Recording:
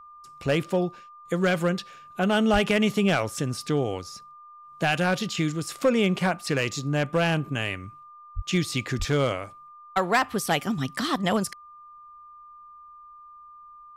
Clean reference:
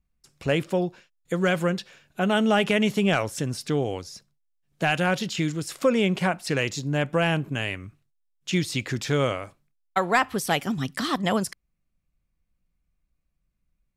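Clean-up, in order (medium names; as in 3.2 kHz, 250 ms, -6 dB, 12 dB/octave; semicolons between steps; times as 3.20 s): clip repair -14.5 dBFS; band-stop 1.2 kHz, Q 30; de-plosive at 2.52/8.35/8.98 s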